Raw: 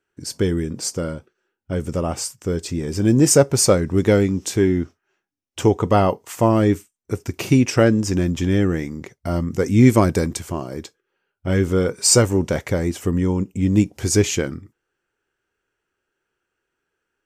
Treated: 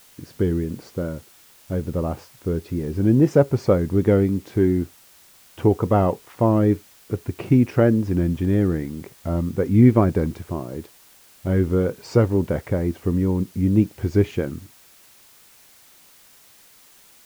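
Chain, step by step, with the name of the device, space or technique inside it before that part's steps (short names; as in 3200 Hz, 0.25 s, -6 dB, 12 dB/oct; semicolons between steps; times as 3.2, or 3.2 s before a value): cassette deck with a dirty head (tape spacing loss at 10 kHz 43 dB; wow and flutter; white noise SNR 30 dB)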